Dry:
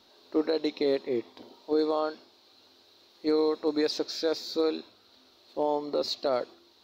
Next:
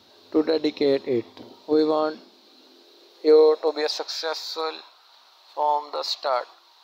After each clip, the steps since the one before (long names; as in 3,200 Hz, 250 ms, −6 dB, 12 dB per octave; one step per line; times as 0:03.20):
high-pass filter sweep 97 Hz → 920 Hz, 0:01.38–0:04.16
level +5 dB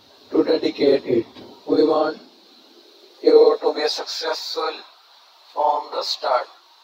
random phases in long frames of 50 ms
level +3.5 dB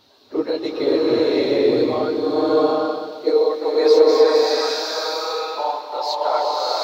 slow-attack reverb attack 780 ms, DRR −6.5 dB
level −4.5 dB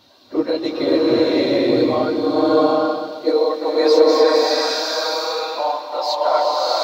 notch comb filter 430 Hz
level +4 dB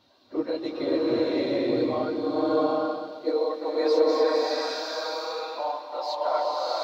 high-shelf EQ 5,200 Hz −8 dB
level −8.5 dB